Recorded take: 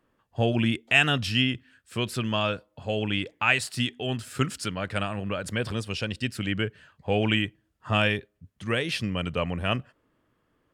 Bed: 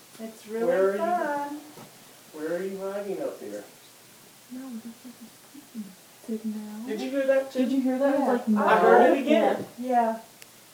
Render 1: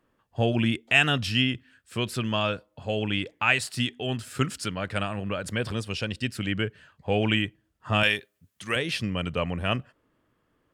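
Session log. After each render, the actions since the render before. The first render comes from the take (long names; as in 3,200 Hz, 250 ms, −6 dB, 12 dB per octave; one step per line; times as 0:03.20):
0:08.03–0:08.76: spectral tilt +3 dB per octave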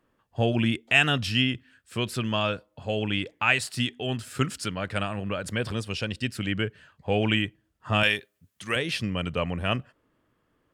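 no processing that can be heard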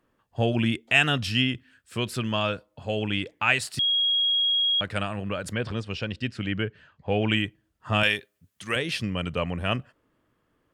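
0:03.79–0:04.81: beep over 3,290 Hz −20 dBFS
0:05.53–0:07.30: high-frequency loss of the air 110 metres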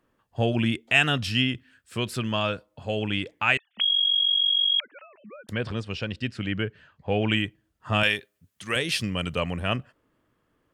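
0:03.57–0:05.49: three sine waves on the formant tracks
0:08.75–0:09.60: high-shelf EQ 4,300 Hz +9.5 dB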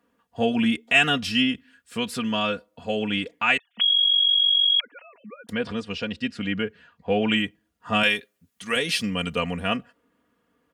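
high-pass filter 81 Hz
comb filter 4.2 ms, depth 75%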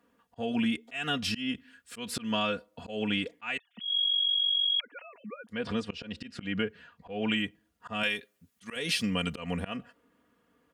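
downward compressor 6 to 1, threshold −25 dBFS, peak gain reduction 12 dB
volume swells 164 ms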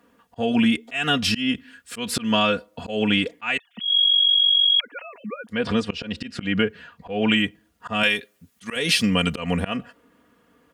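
level +9.5 dB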